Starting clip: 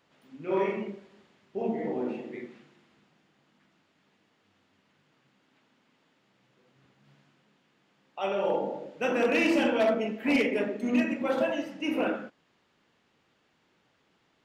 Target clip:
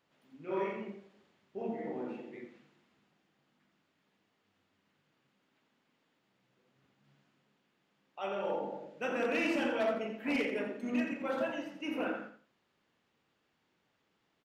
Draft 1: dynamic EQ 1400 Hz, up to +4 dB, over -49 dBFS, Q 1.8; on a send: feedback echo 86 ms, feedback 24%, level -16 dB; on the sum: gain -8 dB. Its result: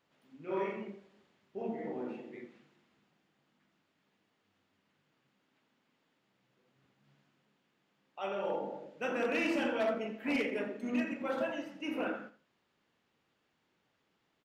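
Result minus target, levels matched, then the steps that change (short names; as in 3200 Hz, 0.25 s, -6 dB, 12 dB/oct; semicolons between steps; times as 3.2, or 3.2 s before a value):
echo-to-direct -6.5 dB
change: feedback echo 86 ms, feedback 24%, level -9.5 dB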